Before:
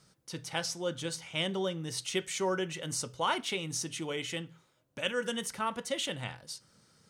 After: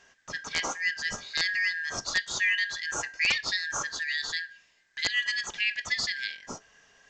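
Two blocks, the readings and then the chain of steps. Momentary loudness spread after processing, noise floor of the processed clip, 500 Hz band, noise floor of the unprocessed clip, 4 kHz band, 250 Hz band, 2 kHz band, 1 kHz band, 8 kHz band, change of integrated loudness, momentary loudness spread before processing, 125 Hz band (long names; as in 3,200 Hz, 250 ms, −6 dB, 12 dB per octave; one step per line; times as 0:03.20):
12 LU, −65 dBFS, −11.5 dB, −71 dBFS, +5.5 dB, −11.5 dB, +13.0 dB, −3.5 dB, +2.5 dB, +6.0 dB, 10 LU, −10.5 dB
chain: band-splitting scrambler in four parts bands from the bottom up 4123
wrap-around overflow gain 18.5 dB
level +4.5 dB
A-law companding 128 kbit/s 16,000 Hz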